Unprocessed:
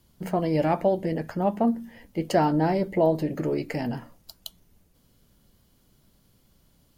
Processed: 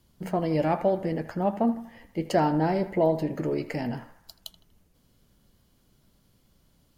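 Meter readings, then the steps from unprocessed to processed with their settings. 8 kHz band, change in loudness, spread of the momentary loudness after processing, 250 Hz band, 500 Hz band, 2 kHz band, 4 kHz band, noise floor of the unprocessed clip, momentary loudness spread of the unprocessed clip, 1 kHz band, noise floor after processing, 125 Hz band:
−2.5 dB, −1.5 dB, 14 LU, −1.5 dB, −1.5 dB, −1.0 dB, −2.0 dB, −63 dBFS, 14 LU, −1.5 dB, −65 dBFS, −1.5 dB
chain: high-shelf EQ 11,000 Hz −4.5 dB
on a send: feedback echo with a band-pass in the loop 80 ms, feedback 60%, band-pass 1,300 Hz, level −12 dB
on the sum: level −1.5 dB

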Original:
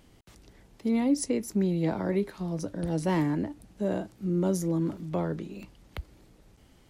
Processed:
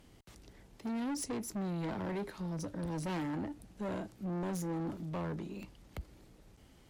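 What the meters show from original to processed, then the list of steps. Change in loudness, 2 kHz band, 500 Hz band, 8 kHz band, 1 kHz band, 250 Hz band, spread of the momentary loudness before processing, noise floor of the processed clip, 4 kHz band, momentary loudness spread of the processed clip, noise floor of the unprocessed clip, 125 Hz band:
−9.5 dB, −5.5 dB, −10.5 dB, −6.0 dB, −5.0 dB, −9.5 dB, 14 LU, −61 dBFS, −5.0 dB, 13 LU, −59 dBFS, −8.5 dB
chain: soft clipping −32 dBFS, distortion −7 dB
harmonic generator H 6 −31 dB, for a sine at −32 dBFS
level −2 dB

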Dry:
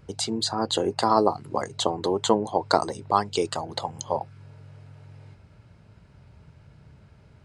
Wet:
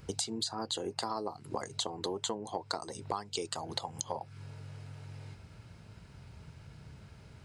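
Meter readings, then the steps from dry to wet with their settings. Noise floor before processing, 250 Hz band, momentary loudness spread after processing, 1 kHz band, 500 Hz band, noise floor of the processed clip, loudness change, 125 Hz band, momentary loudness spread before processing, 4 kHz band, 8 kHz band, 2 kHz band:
−54 dBFS, −13.0 dB, 18 LU, −14.0 dB, −14.0 dB, −55 dBFS, −12.5 dB, −7.0 dB, 9 LU, −7.0 dB, −4.5 dB, −10.5 dB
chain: high-shelf EQ 3,000 Hz +8.5 dB
notch filter 590 Hz, Q 18
downward compressor 12 to 1, threshold −32 dBFS, peak gain reduction 19.5 dB

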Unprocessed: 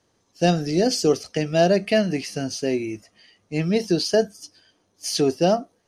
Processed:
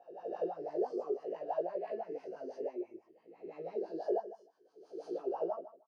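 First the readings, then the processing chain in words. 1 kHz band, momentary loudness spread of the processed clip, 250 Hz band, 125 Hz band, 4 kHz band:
−13.5 dB, 14 LU, −21.0 dB, −37.5 dB, below −35 dB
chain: peak hold with a rise ahead of every peak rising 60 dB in 0.98 s
high-pass filter 110 Hz
parametric band 1,100 Hz +3 dB 1.8 octaves
downward compressor, threshold −17 dBFS, peak gain reduction 7 dB
LFO wah 6 Hz 360–1,100 Hz, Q 16
chorus effect 0.57 Hz, delay 17 ms, depth 2.6 ms
on a send: repeating echo 153 ms, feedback 15%, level −15 dB

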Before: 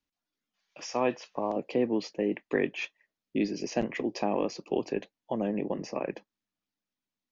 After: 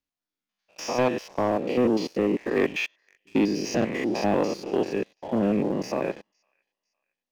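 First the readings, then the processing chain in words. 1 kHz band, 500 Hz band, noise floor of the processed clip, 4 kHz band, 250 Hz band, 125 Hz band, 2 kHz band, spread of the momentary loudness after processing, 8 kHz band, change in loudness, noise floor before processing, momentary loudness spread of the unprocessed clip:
+5.0 dB, +5.5 dB, below −85 dBFS, +6.0 dB, +6.5 dB, +8.0 dB, +6.0 dB, 6 LU, can't be measured, +6.0 dB, below −85 dBFS, 7 LU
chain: spectrum averaged block by block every 100 ms
delay with a high-pass on its return 508 ms, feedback 38%, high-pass 1,900 Hz, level −20.5 dB
leveller curve on the samples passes 2
level +2 dB

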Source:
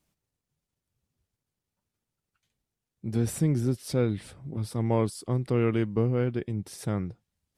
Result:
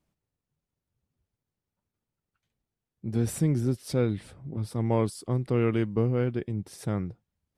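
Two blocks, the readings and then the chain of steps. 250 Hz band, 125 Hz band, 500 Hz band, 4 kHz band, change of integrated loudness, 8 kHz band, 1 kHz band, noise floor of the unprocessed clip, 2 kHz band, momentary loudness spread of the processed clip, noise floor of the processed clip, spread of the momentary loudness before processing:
0.0 dB, 0.0 dB, 0.0 dB, −1.0 dB, 0.0 dB, −1.0 dB, 0.0 dB, below −85 dBFS, 0.0 dB, 10 LU, below −85 dBFS, 10 LU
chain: one half of a high-frequency compander decoder only

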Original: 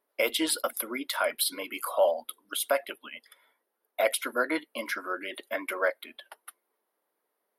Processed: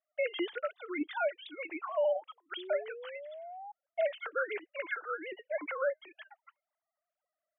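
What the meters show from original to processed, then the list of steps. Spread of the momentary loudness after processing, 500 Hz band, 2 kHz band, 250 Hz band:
13 LU, −3.5 dB, −6.0 dB, −5.5 dB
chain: three sine waves on the formant tracks
brickwall limiter −22 dBFS, peak gain reduction 11 dB
sound drawn into the spectrogram rise, 0:02.57–0:03.72, 350–840 Hz −44 dBFS
level −1 dB

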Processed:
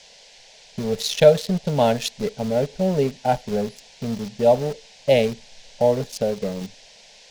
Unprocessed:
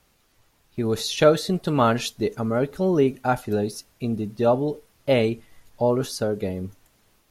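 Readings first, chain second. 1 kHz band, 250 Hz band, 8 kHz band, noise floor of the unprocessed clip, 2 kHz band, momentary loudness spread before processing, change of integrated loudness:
+0.5 dB, −1.5 dB, +1.5 dB, −64 dBFS, −1.0 dB, 11 LU, +1.5 dB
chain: adaptive Wiener filter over 15 samples
noise in a band 390–5,900 Hz −50 dBFS
dynamic equaliser 270 Hz, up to −6 dB, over −34 dBFS, Q 0.94
phaser with its sweep stopped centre 330 Hz, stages 6
in parallel at −6 dB: centre clipping without the shift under −32.5 dBFS
on the sum: level +3 dB

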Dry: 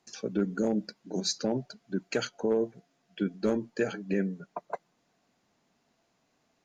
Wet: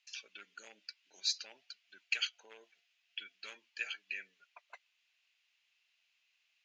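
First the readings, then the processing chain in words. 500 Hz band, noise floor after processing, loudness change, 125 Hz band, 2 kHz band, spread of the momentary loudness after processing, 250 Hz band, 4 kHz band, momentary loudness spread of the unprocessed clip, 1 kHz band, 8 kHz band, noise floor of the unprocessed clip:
−32.5 dB, −78 dBFS, −8.5 dB, below −40 dB, −0.5 dB, 23 LU, below −40 dB, 0.0 dB, 11 LU, −17.0 dB, −6.5 dB, −74 dBFS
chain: four-pole ladder band-pass 3,000 Hz, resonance 60%
level +10.5 dB

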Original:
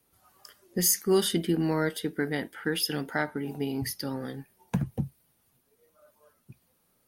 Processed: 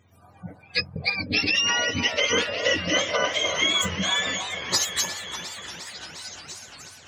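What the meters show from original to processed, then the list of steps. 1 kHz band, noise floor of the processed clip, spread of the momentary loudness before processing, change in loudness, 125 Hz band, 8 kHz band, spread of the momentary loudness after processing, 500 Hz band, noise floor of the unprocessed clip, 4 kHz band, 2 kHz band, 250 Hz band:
+7.0 dB, −53 dBFS, 12 LU, +6.0 dB, −3.5 dB, +4.5 dB, 16 LU, +1.5 dB, −71 dBFS, +13.5 dB, +12.5 dB, −4.0 dB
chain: frequency axis turned over on the octave scale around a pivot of 950 Hz
parametric band 1,700 Hz +3.5 dB 2.5 octaves
compressor whose output falls as the input rises −30 dBFS, ratio −1
high-pass filter 130 Hz 6 dB per octave
bass and treble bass −4 dB, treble +1 dB
gate on every frequency bin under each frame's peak −30 dB strong
echo through a band-pass that steps 302 ms, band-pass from 720 Hz, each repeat 0.7 octaves, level −3.5 dB
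feedback echo with a swinging delay time 350 ms, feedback 77%, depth 127 cents, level −14 dB
level +5.5 dB

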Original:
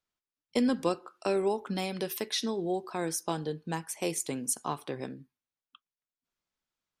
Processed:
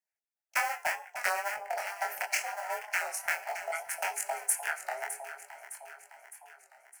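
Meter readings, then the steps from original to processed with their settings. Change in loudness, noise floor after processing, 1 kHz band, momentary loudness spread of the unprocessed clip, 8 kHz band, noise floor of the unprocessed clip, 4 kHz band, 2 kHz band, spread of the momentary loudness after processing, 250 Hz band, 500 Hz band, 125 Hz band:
−0.5 dB, below −85 dBFS, +3.5 dB, 8 LU, +1.5 dB, below −85 dBFS, −5.5 dB, +12.0 dB, 16 LU, below −35 dB, −8.0 dB, below −30 dB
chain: sub-harmonics by changed cycles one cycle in 2, inverted
parametric band 1,900 Hz +5 dB 1.1 octaves
in parallel at +2 dB: brickwall limiter −18.5 dBFS, peak gain reduction 7.5 dB
on the sum: transient designer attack +11 dB, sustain −7 dB
frequency shifter +410 Hz
phaser with its sweep stopped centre 740 Hz, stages 8
tuned comb filter 170 Hz, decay 0.5 s, harmonics all, mix 60%
soft clipping −9.5 dBFS, distortion −23 dB
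auto-filter notch sine 6.3 Hz 410–2,600 Hz
chorus effect 0.72 Hz, delay 20 ms, depth 7.2 ms
delay that swaps between a low-pass and a high-pass 305 ms, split 860 Hz, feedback 74%, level −9 dB
wow of a warped record 33 1/3 rpm, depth 100 cents

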